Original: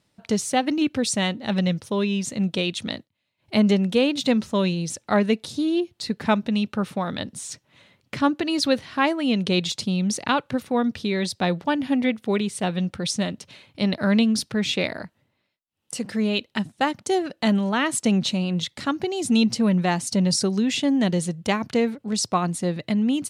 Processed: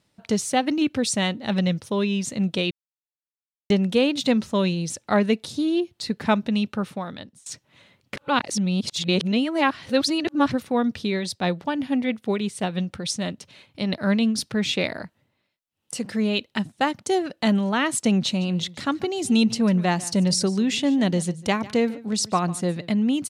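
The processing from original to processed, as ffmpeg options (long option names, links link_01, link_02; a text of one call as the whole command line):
ffmpeg -i in.wav -filter_complex "[0:a]asplit=3[link_01][link_02][link_03];[link_01]afade=type=out:start_time=11.1:duration=0.02[link_04];[link_02]tremolo=f=6.1:d=0.41,afade=type=in:start_time=11.1:duration=0.02,afade=type=out:start_time=14.37:duration=0.02[link_05];[link_03]afade=type=in:start_time=14.37:duration=0.02[link_06];[link_04][link_05][link_06]amix=inputs=3:normalize=0,asplit=3[link_07][link_08][link_09];[link_07]afade=type=out:start_time=18.4:duration=0.02[link_10];[link_08]aecho=1:1:147:0.112,afade=type=in:start_time=18.4:duration=0.02,afade=type=out:start_time=22.9:duration=0.02[link_11];[link_09]afade=type=in:start_time=22.9:duration=0.02[link_12];[link_10][link_11][link_12]amix=inputs=3:normalize=0,asplit=6[link_13][link_14][link_15][link_16][link_17][link_18];[link_13]atrim=end=2.71,asetpts=PTS-STARTPTS,afade=type=out:start_time=2.706:duration=0.004:curve=hsin[link_19];[link_14]atrim=start=2.71:end=3.7,asetpts=PTS-STARTPTS,volume=0[link_20];[link_15]atrim=start=3.7:end=7.46,asetpts=PTS-STARTPTS,afade=type=in:duration=0.004:curve=hsin,afade=type=out:start_time=2.96:duration=0.8:silence=0.0668344[link_21];[link_16]atrim=start=7.46:end=8.162,asetpts=PTS-STARTPTS,afade=type=in:duration=0.004:curve=hsin:silence=0.0668344[link_22];[link_17]atrim=start=8.158:end=10.522,asetpts=PTS-STARTPTS,areverse[link_23];[link_18]atrim=start=10.518[link_24];[link_19][link_20][link_21][link_22]concat=n=4:v=0:a=1[link_25];[link_25][link_23]acrossfade=duration=0.004:curve1=hsin:curve2=hsin[link_26];[link_26][link_24]acrossfade=duration=0.004:curve1=hsin:curve2=hsin" out.wav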